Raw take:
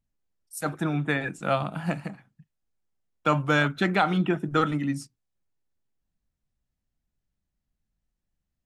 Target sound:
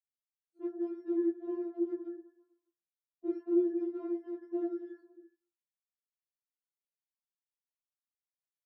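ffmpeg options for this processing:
-filter_complex "[0:a]afftfilt=real='real(if(between(b,1,1012),(2*floor((b-1)/92)+1)*92-b,b),0)':imag='imag(if(between(b,1,1012),(2*floor((b-1)/92)+1)*92-b,b),0)*if(between(b,1,1012),-1,1)':win_size=2048:overlap=0.75,agate=range=-11dB:threshold=-47dB:ratio=16:detection=peak,afftdn=nr=34:nf=-48,alimiter=limit=-16dB:level=0:latency=1:release=21,asplit=6[a][b][c][d][e][f];[b]adelay=122,afreqshift=-43,volume=-24dB[g];[c]adelay=244,afreqshift=-86,volume=-27.9dB[h];[d]adelay=366,afreqshift=-129,volume=-31.8dB[i];[e]adelay=488,afreqshift=-172,volume=-35.6dB[j];[f]adelay=610,afreqshift=-215,volume=-39.5dB[k];[a][g][h][i][j][k]amix=inputs=6:normalize=0,aeval=exprs='0.178*sin(PI/2*5.01*val(0)/0.178)':c=same,asuperpass=centerf=370:order=4:qfactor=2.9,afftfilt=real='re*4*eq(mod(b,16),0)':imag='im*4*eq(mod(b,16),0)':win_size=2048:overlap=0.75,volume=1dB"

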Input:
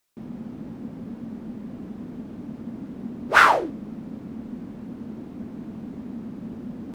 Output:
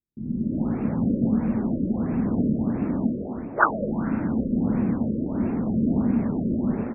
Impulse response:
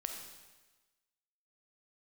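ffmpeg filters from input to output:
-filter_complex "[0:a]dynaudnorm=f=100:g=5:m=16dB,acrossover=split=320[a][b];[b]adelay=260[c];[a][c]amix=inputs=2:normalize=0,aphaser=in_gain=1:out_gain=1:delay=3.3:decay=0.24:speed=0.84:type=sinusoidal,asplit=2[d][e];[1:a]atrim=start_sample=2205,asetrate=27783,aresample=44100[f];[e][f]afir=irnorm=-1:irlink=0,volume=-10dB[g];[d][g]amix=inputs=2:normalize=0,afftfilt=real='re*lt(b*sr/1024,600*pow(2800/600,0.5+0.5*sin(2*PI*1.5*pts/sr)))':imag='im*lt(b*sr/1024,600*pow(2800/600,0.5+0.5*sin(2*PI*1.5*pts/sr)))':win_size=1024:overlap=0.75,volume=-5dB"

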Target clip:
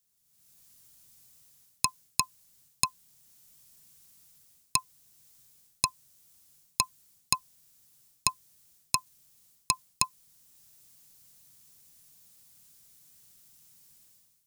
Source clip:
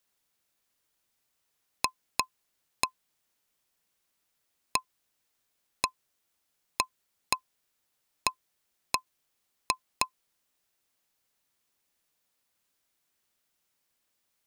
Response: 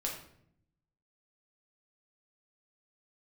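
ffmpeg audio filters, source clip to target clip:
-af "areverse,acompressor=threshold=-31dB:ratio=6,areverse,equalizer=f=140:w=1.6:g=7.5,dynaudnorm=f=120:g=7:m=16dB,bass=f=250:g=11,treble=f=4k:g=14,volume=-9.5dB"

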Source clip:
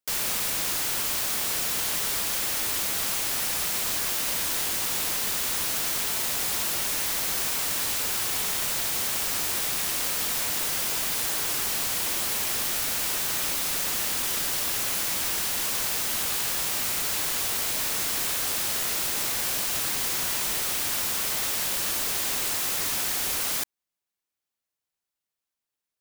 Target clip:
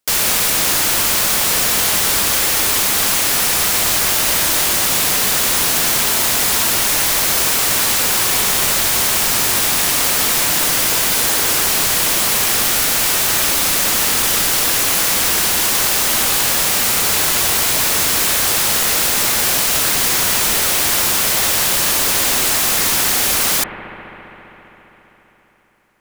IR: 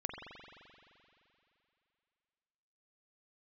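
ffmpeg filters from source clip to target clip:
-filter_complex "[0:a]asplit=2[a][b];[1:a]atrim=start_sample=2205,asetrate=28665,aresample=44100[c];[b][c]afir=irnorm=-1:irlink=0,volume=-2.5dB[d];[a][d]amix=inputs=2:normalize=0,volume=7.5dB"

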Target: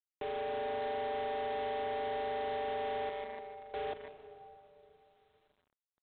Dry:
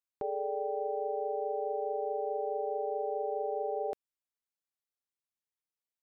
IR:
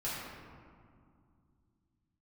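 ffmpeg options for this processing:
-filter_complex "[0:a]asettb=1/sr,asplit=3[a][b][c];[a]atrim=end=3.094[d];[b]atrim=start=3.09:end=3.74,asetpts=PTS-STARTPTS,afade=t=in:d=0.004:c=qsin,afade=t=out:st=0.646:d=0.004:c=qsin,agate=range=-33dB:threshold=-23dB:ratio=3:detection=peak[e];[c]atrim=start=3.736[f];[d][e]acrossfade=d=0.004:c1=hsin:c2=qsin[g];[g][f]acrossfade=d=0.004:c1=qsin:c2=hsin,aecho=1:1:148|296|444|592|740|888|1036:0.282|0.169|0.101|0.0609|0.0365|0.0219|0.0131,acrossover=split=190|280[h][i][j];[j]acrusher=bits=5:mix=0:aa=0.5[k];[h][i][k]amix=inputs=3:normalize=0,bandreject=f=60:t=h:w=6,bandreject=f=120:t=h:w=6,bandreject=f=180:t=h:w=6,bandreject=f=240:t=h:w=6,asplit=2[l][m];[1:a]atrim=start_sample=2205,asetrate=25137,aresample=44100,adelay=129[n];[m][n]afir=irnorm=-1:irlink=0,volume=-23dB[o];[l][o]amix=inputs=2:normalize=0,asoftclip=type=tanh:threshold=-32.5dB" -ar 8000 -c:a adpcm_g726 -b:a 24k

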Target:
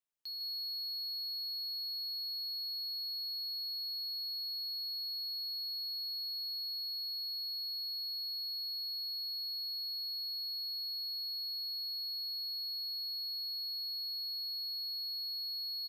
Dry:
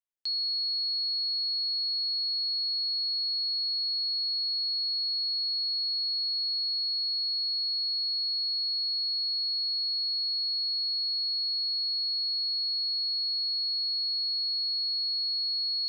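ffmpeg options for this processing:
-af "alimiter=level_in=11.5dB:limit=-24dB:level=0:latency=1,volume=-11.5dB,asoftclip=type=tanh:threshold=-39dB,aecho=1:1:153:0.316"

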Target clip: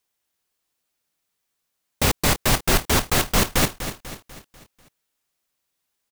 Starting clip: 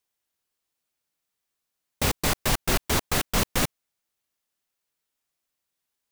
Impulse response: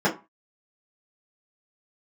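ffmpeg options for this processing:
-af "aecho=1:1:246|492|738|984|1230:0.282|0.135|0.0649|0.0312|0.015,volume=4.5dB"

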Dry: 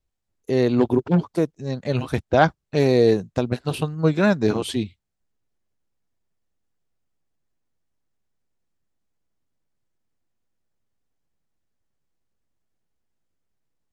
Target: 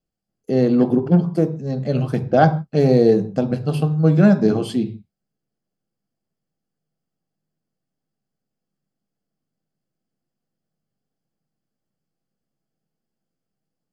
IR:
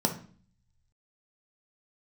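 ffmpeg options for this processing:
-filter_complex "[0:a]asplit=2[a][b];[1:a]atrim=start_sample=2205,atrim=end_sample=6615,asetrate=38367,aresample=44100[c];[b][c]afir=irnorm=-1:irlink=0,volume=-7dB[d];[a][d]amix=inputs=2:normalize=0,volume=-7.5dB"

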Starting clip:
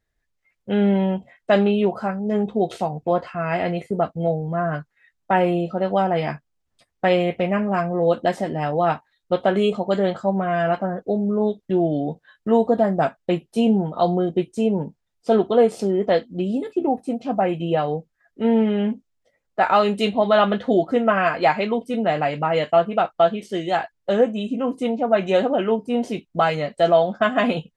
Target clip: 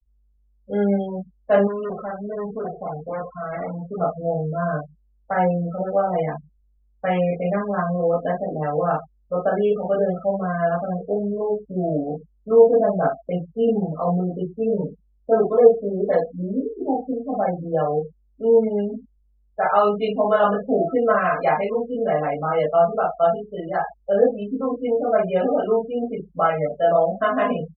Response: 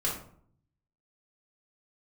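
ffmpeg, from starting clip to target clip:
-filter_complex "[0:a]aeval=exprs='val(0)+0.00398*(sin(2*PI*50*n/s)+sin(2*PI*2*50*n/s)/2+sin(2*PI*3*50*n/s)/3+sin(2*PI*4*50*n/s)/4+sin(2*PI*5*50*n/s)/5)':c=same,aecho=1:1:22|76:0.178|0.158[a];[1:a]atrim=start_sample=2205,atrim=end_sample=3087[b];[a][b]afir=irnorm=-1:irlink=0,asettb=1/sr,asplit=3[c][d][e];[c]atrim=end=1.674[f];[d]atrim=start=1.67:end=4.01,asetpts=PTS-STARTPTS,afade=t=in:d=0.004:c=qsin,afade=t=out:st=2.336:d=0.004:c=qsin,asoftclip=type=hard:threshold=-17.5dB[g];[e]atrim=start=4.006[h];[f][g]acrossfade=d=0.004:c1=hsin:c2=qsin[i];[i][h]acrossfade=d=0.004:c1=qsin:c2=hsin,adynamicequalizer=threshold=0.0447:dfrequency=220:dqfactor=2.7:tfrequency=220:tqfactor=2.7:attack=5:release=100:ratio=0.375:range=2.5:mode=boostabove:tftype=bell,afftfilt=real='re*gte(hypot(re,im),0.126)':imag='im*gte(hypot(re,im),0.126)':win_size=1024:overlap=0.75,lowpass=1.7k,aemphasis=mode=production:type=bsi,volume=-6dB"

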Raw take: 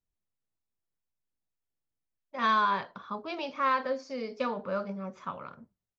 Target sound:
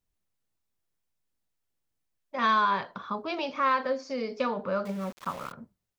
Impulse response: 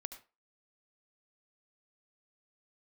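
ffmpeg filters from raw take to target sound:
-filter_complex "[0:a]asplit=2[a][b];[b]acompressor=threshold=-37dB:ratio=6,volume=-0.5dB[c];[a][c]amix=inputs=2:normalize=0,asettb=1/sr,asplit=3[d][e][f];[d]atrim=end=4.854[g];[e]atrim=start=4.85:end=5.52,asetpts=PTS-STARTPTS,afade=t=in:d=0.004:c=qsin,afade=t=out:st=0.666:d=0.004:c=qsin,aeval=exprs='val(0)*gte(abs(val(0)),0.00891)':c=same[h];[f]atrim=start=5.516[i];[g][h]acrossfade=d=0.004:c1=hsin:c2=qsin[j];[j][i]acrossfade=d=0.004:c1=qsin:c2=hsin"

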